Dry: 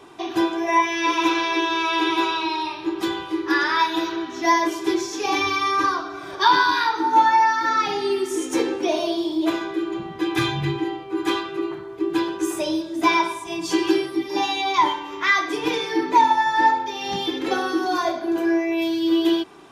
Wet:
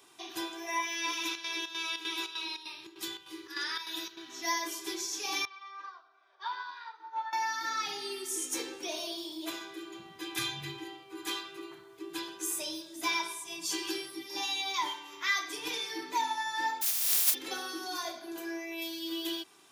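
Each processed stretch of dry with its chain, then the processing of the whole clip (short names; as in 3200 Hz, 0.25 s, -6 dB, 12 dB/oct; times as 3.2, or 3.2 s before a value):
1.14–4.3 bell 830 Hz -6 dB 1.6 oct + chopper 3.3 Hz, depth 65%, duty 70%
5.45–7.33 HPF 540 Hz 24 dB/oct + tape spacing loss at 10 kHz 38 dB + upward expander, over -36 dBFS
16.81–17.33 spectral contrast lowered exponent 0.14 + HPF 160 Hz 24 dB/oct
whole clip: HPF 68 Hz; pre-emphasis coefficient 0.9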